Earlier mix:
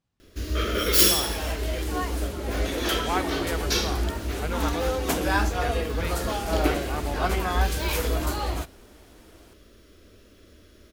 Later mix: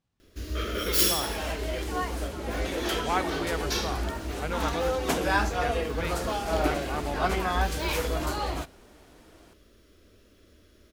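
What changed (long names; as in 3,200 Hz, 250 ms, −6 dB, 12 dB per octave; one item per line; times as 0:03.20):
first sound −5.0 dB
second sound: add high-shelf EQ 11,000 Hz −11 dB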